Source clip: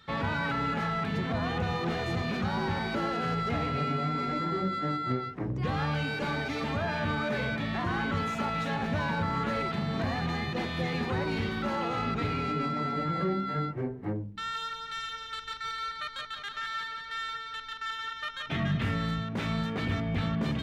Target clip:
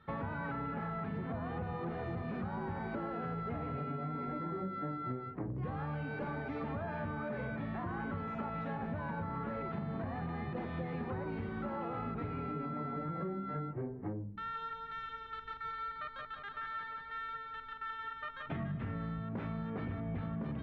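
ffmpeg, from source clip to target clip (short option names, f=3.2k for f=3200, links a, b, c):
-af "lowpass=1.4k,acompressor=threshold=-34dB:ratio=6,volume=-1.5dB"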